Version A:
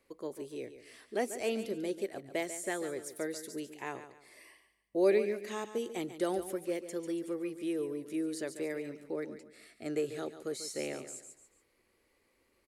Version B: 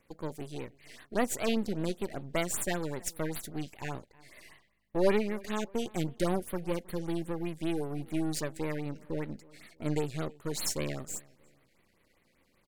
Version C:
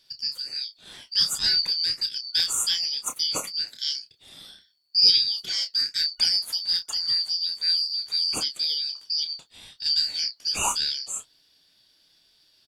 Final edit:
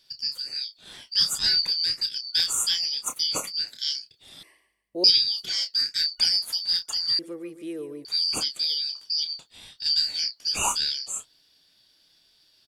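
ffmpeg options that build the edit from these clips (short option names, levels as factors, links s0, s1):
-filter_complex "[0:a]asplit=2[s0][s1];[2:a]asplit=3[s2][s3][s4];[s2]atrim=end=4.432[s5];[s0]atrim=start=4.428:end=5.042[s6];[s3]atrim=start=5.038:end=7.192[s7];[s1]atrim=start=7.188:end=8.052[s8];[s4]atrim=start=8.048[s9];[s5][s6]acrossfade=d=0.004:c1=hsin:c2=hsin[s10];[s10][s7]acrossfade=d=0.004:c1=hsin:c2=hsin[s11];[s11][s8]acrossfade=d=0.004:c1=hsin:c2=hsin[s12];[s12][s9]acrossfade=d=0.004:c1=hsin:c2=hsin"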